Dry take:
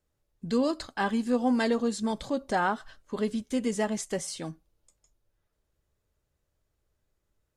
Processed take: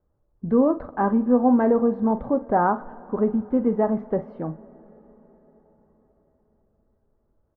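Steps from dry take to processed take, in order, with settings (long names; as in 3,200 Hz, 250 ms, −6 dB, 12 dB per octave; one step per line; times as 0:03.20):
low-pass filter 1,200 Hz 24 dB per octave
double-tracking delay 45 ms −13 dB
on a send: convolution reverb RT60 5.2 s, pre-delay 47 ms, DRR 20 dB
on the sum: level +7.5 dB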